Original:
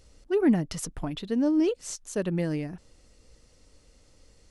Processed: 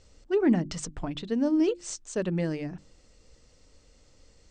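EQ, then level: steep low-pass 8600 Hz 96 dB/oct; notches 50/100/150/200/250/300/350 Hz; 0.0 dB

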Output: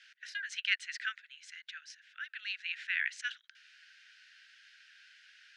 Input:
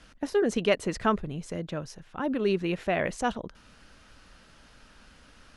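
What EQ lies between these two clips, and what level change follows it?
steep high-pass 1500 Hz 96 dB/oct; air absorption 130 m; +3.0 dB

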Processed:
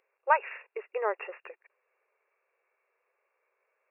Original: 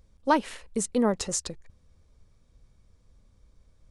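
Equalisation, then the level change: brick-wall FIR band-pass 360–2800 Hz; tilt +4 dB/oct; 0.0 dB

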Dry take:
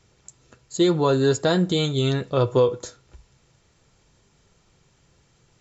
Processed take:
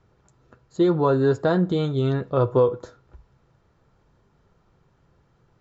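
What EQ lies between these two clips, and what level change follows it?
air absorption 150 m; resonant high shelf 1800 Hz -6.5 dB, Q 1.5; 0.0 dB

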